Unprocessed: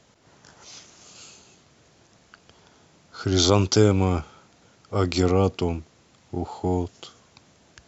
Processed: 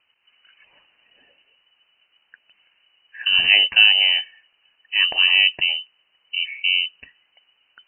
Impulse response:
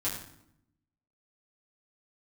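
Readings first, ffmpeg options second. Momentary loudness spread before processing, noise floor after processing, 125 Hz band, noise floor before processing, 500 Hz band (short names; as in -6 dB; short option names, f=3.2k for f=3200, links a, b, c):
15 LU, -67 dBFS, under -30 dB, -59 dBFS, -21.5 dB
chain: -af "lowpass=f=2.6k:t=q:w=0.5098,lowpass=f=2.6k:t=q:w=0.6013,lowpass=f=2.6k:t=q:w=0.9,lowpass=f=2.6k:t=q:w=2.563,afreqshift=-3100,afftdn=nr=12:nf=-44,volume=4dB"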